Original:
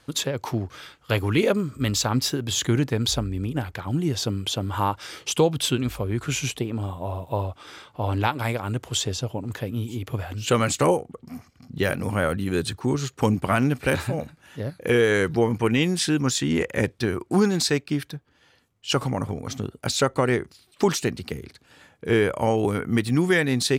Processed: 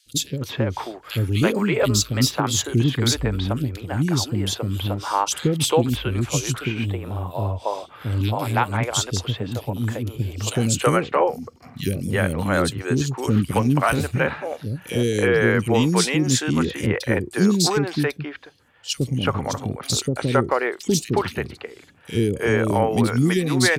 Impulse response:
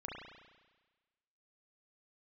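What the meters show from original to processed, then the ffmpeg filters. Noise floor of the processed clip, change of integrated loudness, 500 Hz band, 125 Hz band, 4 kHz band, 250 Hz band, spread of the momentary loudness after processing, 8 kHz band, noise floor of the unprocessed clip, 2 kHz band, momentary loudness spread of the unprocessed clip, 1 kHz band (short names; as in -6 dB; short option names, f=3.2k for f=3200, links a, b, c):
-47 dBFS, +2.5 dB, +1.5 dB, +4.0 dB, +2.0 dB, +2.5 dB, 9 LU, +4.0 dB, -60 dBFS, +2.5 dB, 11 LU, +3.5 dB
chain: -filter_complex "[0:a]acrossover=split=390|2900[a][b][c];[a]adelay=60[d];[b]adelay=330[e];[d][e][c]amix=inputs=3:normalize=0,volume=4dB"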